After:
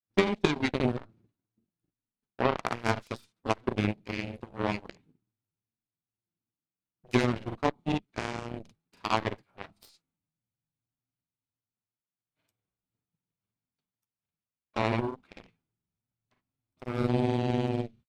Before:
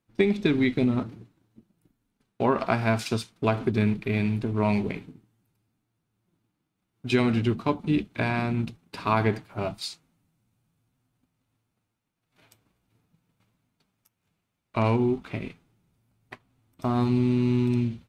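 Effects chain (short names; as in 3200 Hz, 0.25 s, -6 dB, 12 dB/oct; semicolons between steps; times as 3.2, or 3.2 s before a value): added harmonics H 4 -25 dB, 7 -16 dB, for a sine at -7.5 dBFS; grains 0.1 s, spray 38 ms, pitch spread up and down by 0 st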